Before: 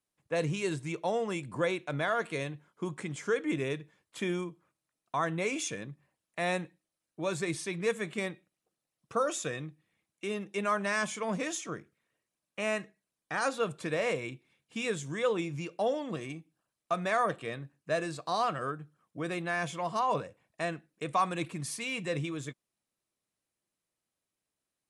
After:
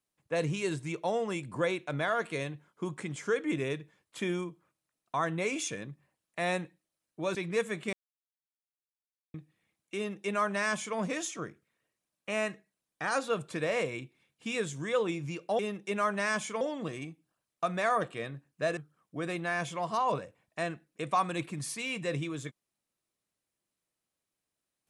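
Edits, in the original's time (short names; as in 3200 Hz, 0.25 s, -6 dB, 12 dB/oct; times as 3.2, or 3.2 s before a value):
7.35–7.65 cut
8.23–9.64 mute
10.26–11.28 copy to 15.89
18.05–18.79 cut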